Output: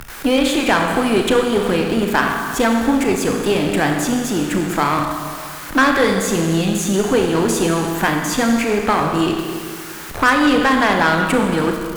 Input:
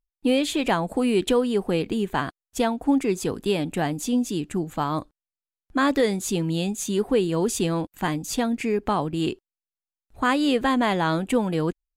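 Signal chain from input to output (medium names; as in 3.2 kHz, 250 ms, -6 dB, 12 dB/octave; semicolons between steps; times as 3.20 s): jump at every zero crossing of -33 dBFS; peaking EQ 1.5 kHz +8 dB 0.91 oct; Schroeder reverb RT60 1.5 s, combs from 27 ms, DRR 3 dB; Chebyshev shaper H 6 -20 dB, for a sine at -4.5 dBFS; three bands compressed up and down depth 40%; trim +3 dB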